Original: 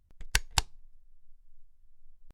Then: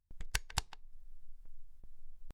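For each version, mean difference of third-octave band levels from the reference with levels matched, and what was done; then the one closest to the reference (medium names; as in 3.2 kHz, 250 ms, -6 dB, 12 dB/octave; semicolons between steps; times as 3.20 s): 4.5 dB: gate with hold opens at -50 dBFS; compression 2.5:1, threshold -46 dBFS, peak gain reduction 17.5 dB; speakerphone echo 150 ms, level -14 dB; trim +6.5 dB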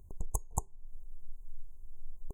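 15.5 dB: peaking EQ 400 Hz +10 dB 0.21 oct; compression 8:1, threshold -41 dBFS, peak gain reduction 21 dB; brick-wall FIR band-stop 1.1–6.2 kHz; trim +12.5 dB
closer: first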